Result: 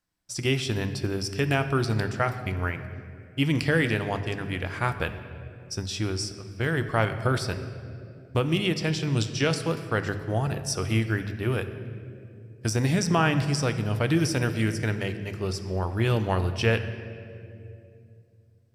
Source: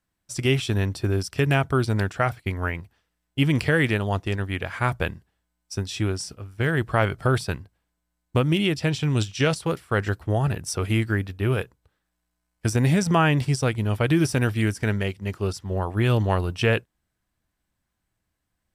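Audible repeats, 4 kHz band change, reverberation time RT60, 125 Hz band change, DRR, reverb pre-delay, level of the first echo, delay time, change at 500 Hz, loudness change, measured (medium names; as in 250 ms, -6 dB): no echo, -0.5 dB, 2.5 s, -3.5 dB, 9.0 dB, 3 ms, no echo, no echo, -2.5 dB, -3.0 dB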